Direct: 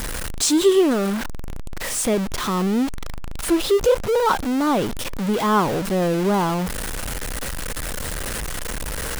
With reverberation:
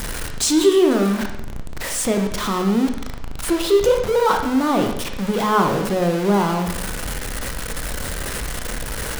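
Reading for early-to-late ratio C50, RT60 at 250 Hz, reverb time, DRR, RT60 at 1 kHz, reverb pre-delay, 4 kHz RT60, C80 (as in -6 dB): 6.5 dB, 0.80 s, 0.80 s, 4.0 dB, 0.80 s, 14 ms, 0.75 s, 9.5 dB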